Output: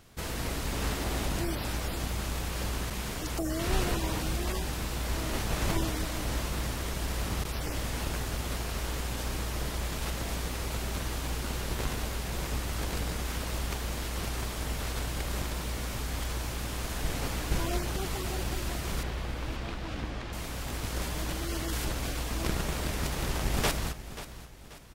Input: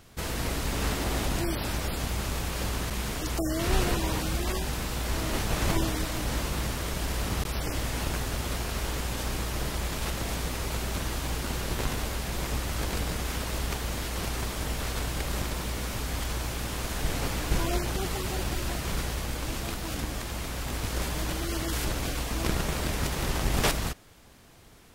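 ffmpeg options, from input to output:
-filter_complex "[0:a]asettb=1/sr,asplit=3[a][b][c];[a]atrim=end=19.034[d];[b]atrim=start=19.03:end=20.33,asetpts=PTS-STARTPTS,afade=t=in:d=0.004:c=qsin,afade=t=out:st=1.296:d=0.004:c=qsin,lowpass=3.7k[e];[c]atrim=start=20.326[f];[d][e]acrossfade=d=0.004:c1=hsin:c2=qsin[g];[g][f]acrossfade=d=0.004:c1=qsin:c2=hsin,asplit=2[h][i];[i]aecho=0:1:535|1070|1605|2140:0.2|0.0798|0.0319|0.0128[j];[h][j]amix=inputs=2:normalize=0,volume=-3dB"

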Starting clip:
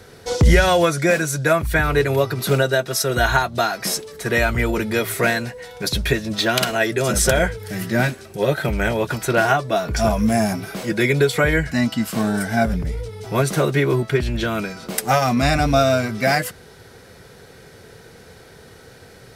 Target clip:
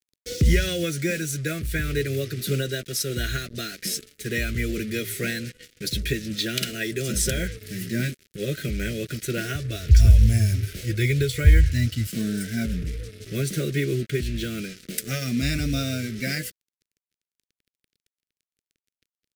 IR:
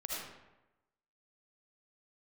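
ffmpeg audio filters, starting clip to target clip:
-filter_complex "[0:a]asettb=1/sr,asplit=3[a][b][c];[a]atrim=end=9.554[d];[b]atrim=start=9.55:end=12.07,asetpts=PTS-STARTPTS,afade=t=in:d=0.004:c=qsin,afade=t=out:st=2.516:d=0.004:c=qsin,lowshelf=f=130:t=q:w=3:g=13.5[e];[c]atrim=start=12.066[f];[d][e]acrossfade=d=0.004:c1=hsin:c2=qsin[g];[g][f]acrossfade=d=0.004:c1=qsin:c2=hsin,acrusher=bits=4:mix=0:aa=0.5,asuperstop=centerf=890:order=4:qfactor=0.59,volume=-5dB"

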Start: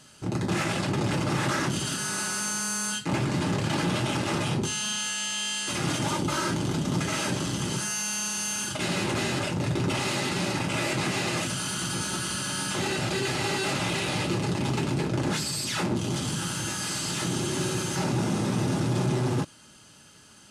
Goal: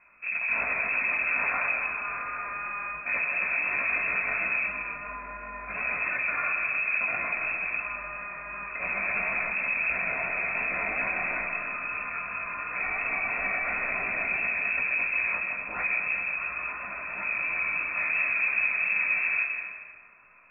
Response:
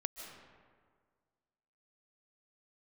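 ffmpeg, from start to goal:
-filter_complex "[0:a]lowpass=f=2.3k:t=q:w=0.5098,lowpass=f=2.3k:t=q:w=0.6013,lowpass=f=2.3k:t=q:w=0.9,lowpass=f=2.3k:t=q:w=2.563,afreqshift=-2700,flanger=delay=15.5:depth=3.1:speed=2.9[a];[1:a]atrim=start_sample=2205[b];[a][b]afir=irnorm=-1:irlink=0,volume=3dB"

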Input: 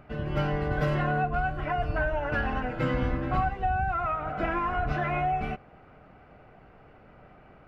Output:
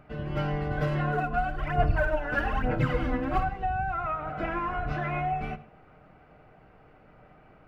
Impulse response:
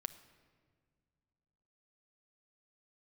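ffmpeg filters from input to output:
-filter_complex "[0:a]asplit=3[a][b][c];[a]afade=t=out:st=1.11:d=0.02[d];[b]aphaser=in_gain=1:out_gain=1:delay=4.1:decay=0.66:speed=1.1:type=sinusoidal,afade=t=in:st=1.11:d=0.02,afade=t=out:st=3.42:d=0.02[e];[c]afade=t=in:st=3.42:d=0.02[f];[d][e][f]amix=inputs=3:normalize=0[g];[1:a]atrim=start_sample=2205,atrim=end_sample=6615[h];[g][h]afir=irnorm=-1:irlink=0"

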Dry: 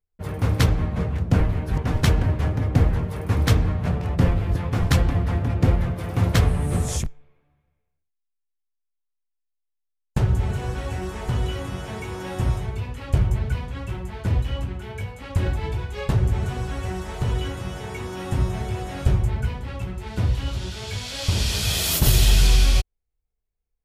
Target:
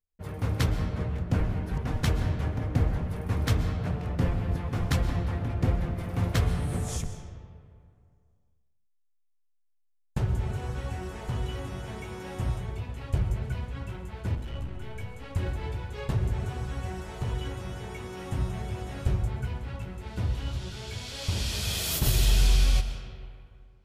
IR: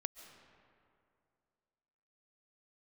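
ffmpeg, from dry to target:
-filter_complex "[0:a]asettb=1/sr,asplit=3[a][b][c];[a]atrim=end=14.354[d];[b]atrim=start=14.35:end=14.75,asetpts=PTS-STARTPTS,afade=t=in:d=0.004:c=qsin,afade=t=out:st=0.396:d=0.004:c=qsin,aeval=exprs='(tanh(15.8*val(0)+0.35)-tanh(0.35))/15.8':c=same[e];[c]atrim=start=14.746[f];[d][e]acrossfade=d=0.004:c1=hsin:c2=qsin[g];[g][f]acrossfade=d=0.004:c1=qsin:c2=hsin[h];[1:a]atrim=start_sample=2205,asetrate=48510,aresample=44100[i];[h][i]afir=irnorm=-1:irlink=0,volume=-3.5dB"

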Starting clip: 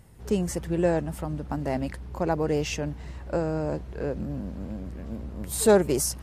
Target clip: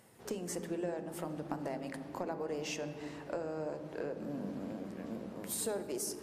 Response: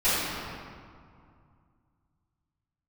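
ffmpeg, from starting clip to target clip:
-filter_complex "[0:a]highpass=290,acompressor=threshold=-35dB:ratio=6,asplit=2[a][b];[1:a]atrim=start_sample=2205,lowshelf=f=400:g=11[c];[b][c]afir=irnorm=-1:irlink=0,volume=-26dB[d];[a][d]amix=inputs=2:normalize=0,volume=-1.5dB"

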